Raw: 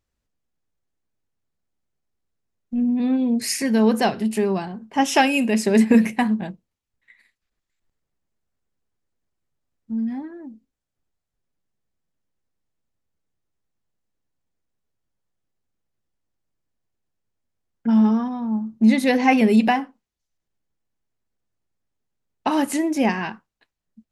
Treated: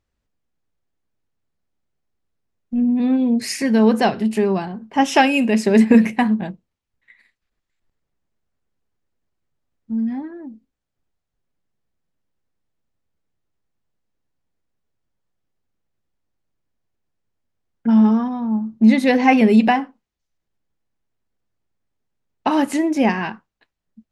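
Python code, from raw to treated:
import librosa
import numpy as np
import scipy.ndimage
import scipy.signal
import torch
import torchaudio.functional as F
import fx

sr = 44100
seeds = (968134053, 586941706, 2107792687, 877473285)

y = fx.high_shelf(x, sr, hz=7200.0, db=-11.0)
y = y * librosa.db_to_amplitude(3.0)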